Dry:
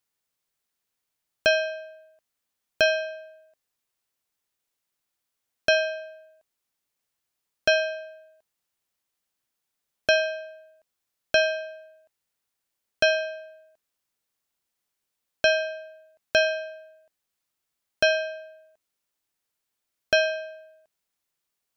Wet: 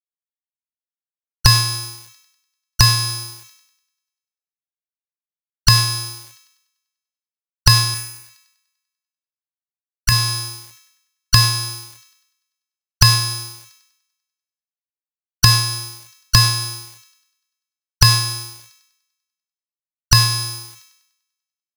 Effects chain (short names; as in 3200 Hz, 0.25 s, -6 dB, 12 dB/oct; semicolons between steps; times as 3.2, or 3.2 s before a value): four-band scrambler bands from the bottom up 2341; recorder AGC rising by 55 dB/s; tone controls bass +6 dB, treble 0 dB; crossover distortion -25 dBFS; sample leveller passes 5; 7.94–10.12 graphic EQ 125/250/500/1000/2000/4000 Hz -4/-11/-5/-7/+5/-10 dB; on a send: thin delay 98 ms, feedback 59%, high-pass 1400 Hz, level -21 dB; on the sum: sustainer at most 71 dB/s; gain -11.5 dB